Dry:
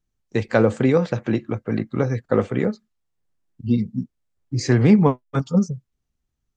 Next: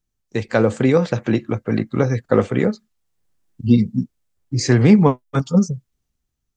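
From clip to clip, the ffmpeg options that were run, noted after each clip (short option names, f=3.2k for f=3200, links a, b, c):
-af "highshelf=f=4.4k:g=5.5,dynaudnorm=f=130:g=11:m=11.5dB,volume=-1dB"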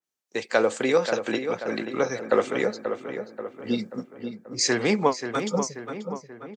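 -filter_complex "[0:a]highpass=430,asplit=2[a][b];[b]adelay=534,lowpass=f=2.6k:p=1,volume=-8dB,asplit=2[c][d];[d]adelay=534,lowpass=f=2.6k:p=1,volume=0.54,asplit=2[e][f];[f]adelay=534,lowpass=f=2.6k:p=1,volume=0.54,asplit=2[g][h];[h]adelay=534,lowpass=f=2.6k:p=1,volume=0.54,asplit=2[i][j];[j]adelay=534,lowpass=f=2.6k:p=1,volume=0.54,asplit=2[k][l];[l]adelay=534,lowpass=f=2.6k:p=1,volume=0.54[m];[c][e][g][i][k][m]amix=inputs=6:normalize=0[n];[a][n]amix=inputs=2:normalize=0,adynamicequalizer=threshold=0.0126:dfrequency=2700:dqfactor=0.7:tfrequency=2700:tqfactor=0.7:attack=5:release=100:ratio=0.375:range=2.5:mode=boostabove:tftype=highshelf,volume=-2dB"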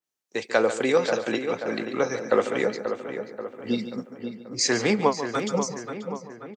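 -af "aecho=1:1:143:0.251"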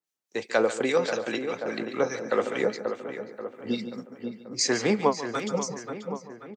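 -filter_complex "[0:a]highpass=91,acrossover=split=1400[a][b];[a]aeval=exprs='val(0)*(1-0.5/2+0.5/2*cos(2*PI*4.9*n/s))':c=same[c];[b]aeval=exprs='val(0)*(1-0.5/2-0.5/2*cos(2*PI*4.9*n/s))':c=same[d];[c][d]amix=inputs=2:normalize=0"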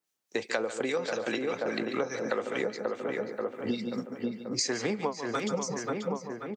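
-af "acompressor=threshold=-32dB:ratio=10,volume=5dB"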